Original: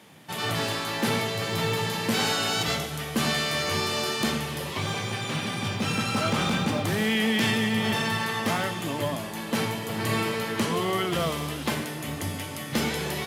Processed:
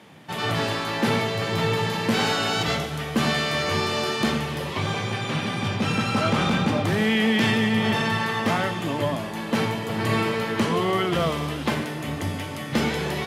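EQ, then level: LPF 3300 Hz 6 dB/oct; +4.0 dB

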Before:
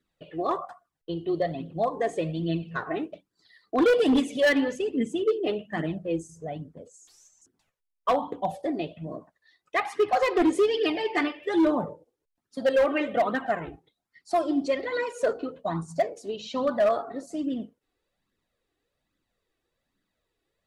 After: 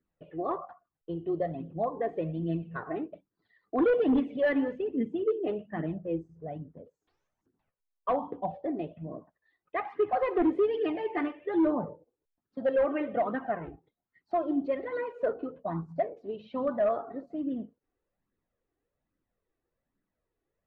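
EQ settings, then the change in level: air absorption 390 m; high shelf 3000 Hz -9.5 dB; high shelf 6700 Hz -6.5 dB; -2.5 dB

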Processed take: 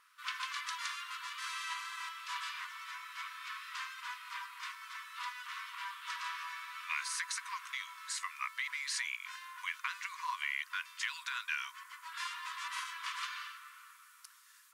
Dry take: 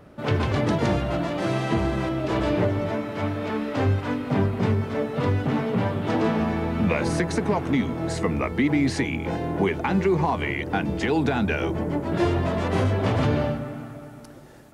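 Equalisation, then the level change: brick-wall FIR high-pass 950 Hz; high shelf 3800 Hz +10.5 dB; -9.0 dB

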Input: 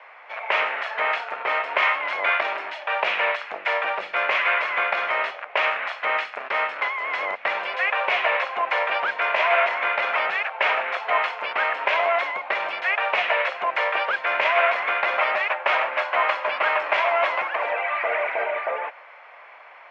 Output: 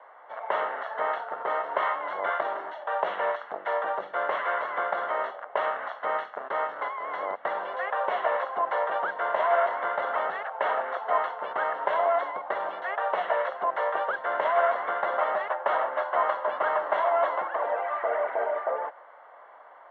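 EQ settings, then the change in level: running mean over 18 samples; 0.0 dB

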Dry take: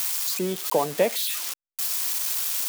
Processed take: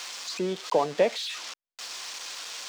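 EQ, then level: air absorption 150 m; tone controls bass -5 dB, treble +8 dB; high shelf 8400 Hz -10 dB; 0.0 dB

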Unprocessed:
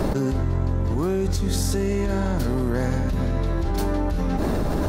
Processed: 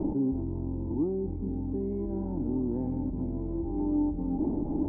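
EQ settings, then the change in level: vocal tract filter u; +2.0 dB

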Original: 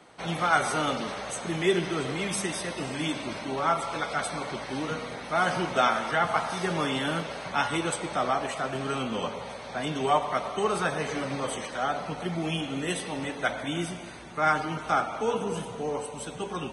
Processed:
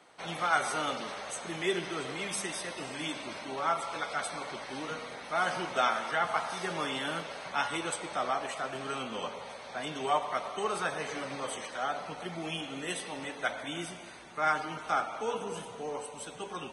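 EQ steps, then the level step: low shelf 280 Hz -10.5 dB; -3.5 dB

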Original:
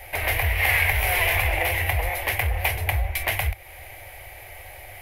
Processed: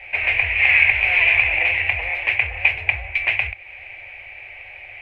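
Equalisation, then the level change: synth low-pass 2500 Hz, resonance Q 8.5; low shelf 190 Hz -5.5 dB; -5.0 dB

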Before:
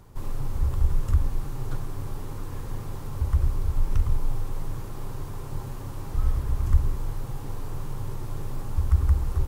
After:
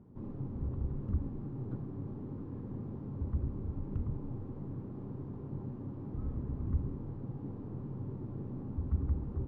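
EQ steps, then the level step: band-pass 230 Hz, Q 2.1; air absorption 140 m; +4.5 dB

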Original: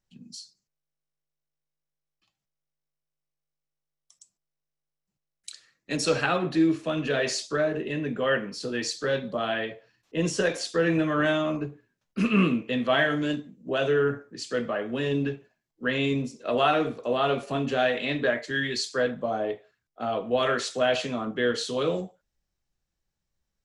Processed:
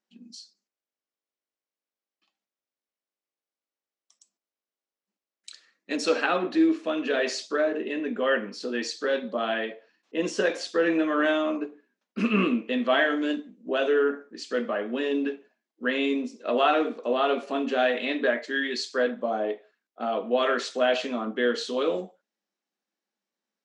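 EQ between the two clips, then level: brick-wall FIR high-pass 190 Hz; air absorption 77 m; +1.0 dB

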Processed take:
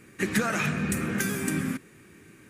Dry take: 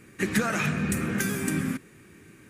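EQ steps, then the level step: low shelf 140 Hz -3 dB; 0.0 dB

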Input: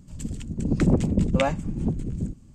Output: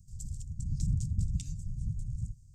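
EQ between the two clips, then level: Chebyshev band-stop 120–5400 Hz, order 3; -3.5 dB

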